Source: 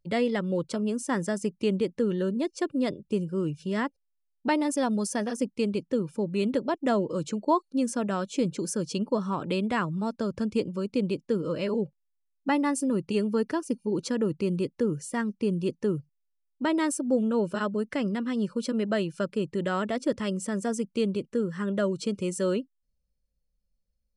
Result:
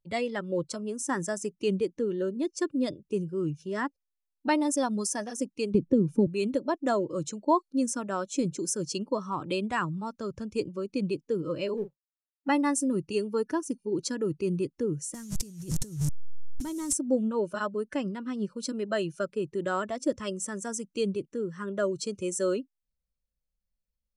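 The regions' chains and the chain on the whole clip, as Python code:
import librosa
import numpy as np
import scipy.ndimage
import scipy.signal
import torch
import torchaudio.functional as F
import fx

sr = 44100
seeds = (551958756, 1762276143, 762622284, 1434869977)

y = fx.chain(x, sr, fx.tilt_shelf(db=7.5, hz=700.0),
    fx.band_squash(depth_pct=100), at=(5.74, 6.27))
y = fx.chain(y, sr, fx.law_mismatch(coded='A'),
    fx.lowpass(hz=2700.0, slope=6),
    fx.doubler(ms=40.0, db=-11.0), at=(11.77, 12.48))
y = fx.chain(y, sr, fx.delta_mod(bps=64000, step_db=-37.5),
    fx.bass_treble(bass_db=15, treble_db=13),
    fx.over_compress(threshold_db=-30.0, ratio=-1.0), at=(15.14, 16.93))
y = fx.noise_reduce_blind(y, sr, reduce_db=8)
y = fx.dynamic_eq(y, sr, hz=6900.0, q=1.2, threshold_db=-53.0, ratio=4.0, max_db=5)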